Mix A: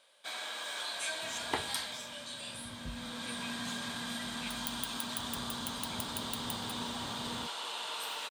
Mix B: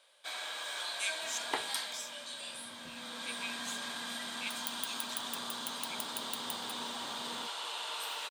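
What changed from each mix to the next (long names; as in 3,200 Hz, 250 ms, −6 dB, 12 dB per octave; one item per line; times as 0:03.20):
speech +6.0 dB
master: add Bessel high-pass filter 370 Hz, order 2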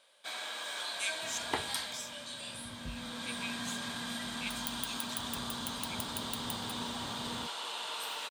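master: remove Bessel high-pass filter 370 Hz, order 2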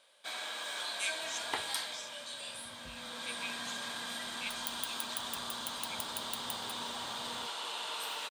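speech: add low-pass filter 6,000 Hz
second sound: add low-shelf EQ 440 Hz −12 dB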